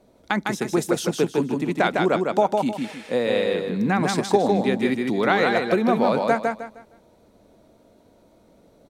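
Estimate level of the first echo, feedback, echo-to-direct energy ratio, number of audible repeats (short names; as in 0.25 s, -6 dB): -3.5 dB, 29%, -3.0 dB, 3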